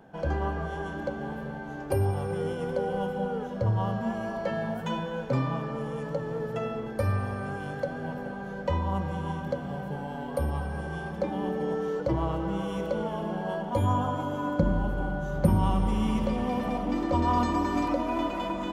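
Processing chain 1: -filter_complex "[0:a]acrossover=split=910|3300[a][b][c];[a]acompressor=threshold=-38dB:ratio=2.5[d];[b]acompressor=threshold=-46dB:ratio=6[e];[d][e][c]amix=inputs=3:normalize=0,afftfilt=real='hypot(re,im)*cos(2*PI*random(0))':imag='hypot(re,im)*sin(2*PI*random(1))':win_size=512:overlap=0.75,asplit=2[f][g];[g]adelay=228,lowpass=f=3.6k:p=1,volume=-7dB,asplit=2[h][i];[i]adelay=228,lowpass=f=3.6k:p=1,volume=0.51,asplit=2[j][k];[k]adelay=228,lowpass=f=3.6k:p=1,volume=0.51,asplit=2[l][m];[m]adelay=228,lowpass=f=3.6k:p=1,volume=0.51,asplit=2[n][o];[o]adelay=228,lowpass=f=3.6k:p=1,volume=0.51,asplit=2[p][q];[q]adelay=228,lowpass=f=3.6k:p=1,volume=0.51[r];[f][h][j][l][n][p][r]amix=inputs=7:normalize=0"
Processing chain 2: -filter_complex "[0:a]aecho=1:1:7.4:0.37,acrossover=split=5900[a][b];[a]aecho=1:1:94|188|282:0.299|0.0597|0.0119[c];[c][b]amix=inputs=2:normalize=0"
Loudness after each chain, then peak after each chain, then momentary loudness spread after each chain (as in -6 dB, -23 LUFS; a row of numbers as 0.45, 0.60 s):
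-43.0, -29.5 LUFS; -26.0, -8.0 dBFS; 3, 8 LU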